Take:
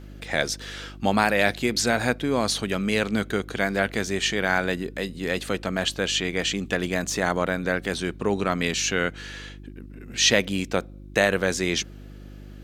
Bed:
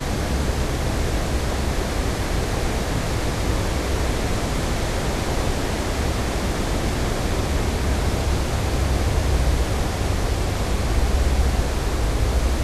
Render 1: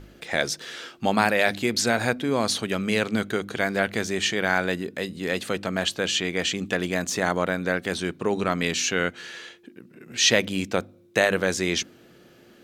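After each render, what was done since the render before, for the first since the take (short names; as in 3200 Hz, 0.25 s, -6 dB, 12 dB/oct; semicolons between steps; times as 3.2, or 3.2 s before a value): de-hum 50 Hz, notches 6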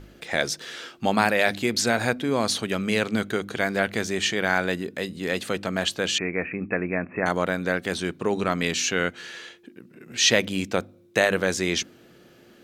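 6.18–7.26 Chebyshev low-pass 2600 Hz, order 10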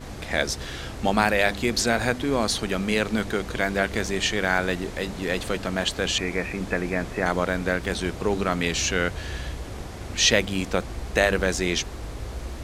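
add bed -13.5 dB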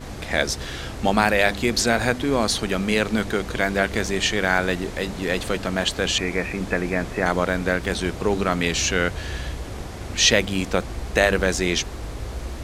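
gain +2.5 dB; limiter -2 dBFS, peak gain reduction 1 dB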